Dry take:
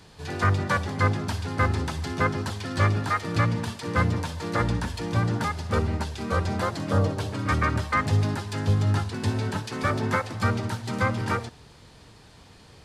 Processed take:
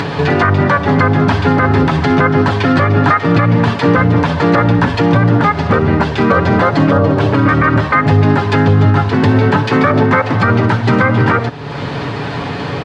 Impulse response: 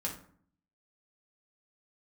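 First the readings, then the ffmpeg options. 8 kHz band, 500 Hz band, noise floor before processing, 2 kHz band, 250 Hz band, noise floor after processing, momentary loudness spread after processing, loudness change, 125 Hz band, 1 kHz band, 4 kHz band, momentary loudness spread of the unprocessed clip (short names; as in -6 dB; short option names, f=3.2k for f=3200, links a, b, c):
n/a, +16.5 dB, -51 dBFS, +14.0 dB, +17.5 dB, -21 dBFS, 4 LU, +14.0 dB, +13.0 dB, +14.5 dB, +11.0 dB, 6 LU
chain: -af "highpass=120,lowpass=2.3k,acompressor=mode=upward:threshold=-32dB:ratio=2.5,aecho=1:1:7.1:0.43,acompressor=threshold=-27dB:ratio=6,alimiter=level_in=23dB:limit=-1dB:release=50:level=0:latency=1,volume=-1dB"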